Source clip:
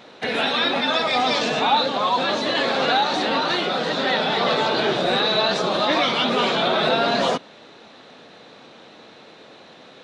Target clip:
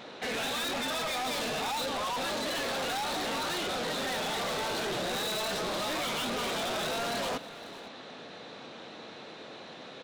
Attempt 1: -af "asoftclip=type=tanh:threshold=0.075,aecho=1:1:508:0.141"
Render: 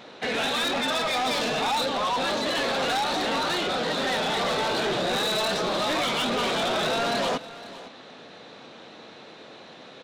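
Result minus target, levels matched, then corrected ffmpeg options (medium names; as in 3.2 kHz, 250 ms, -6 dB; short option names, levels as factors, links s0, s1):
saturation: distortion -5 dB
-af "asoftclip=type=tanh:threshold=0.0266,aecho=1:1:508:0.141"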